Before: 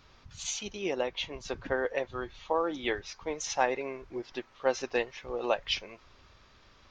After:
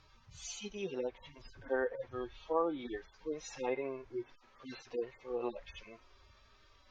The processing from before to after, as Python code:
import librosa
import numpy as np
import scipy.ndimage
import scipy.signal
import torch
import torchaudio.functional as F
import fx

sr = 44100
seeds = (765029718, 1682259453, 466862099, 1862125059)

y = fx.hpss_only(x, sr, part='harmonic')
y = fx.env_lowpass_down(y, sr, base_hz=2800.0, full_db=-29.0)
y = y * librosa.db_to_amplitude(-2.0)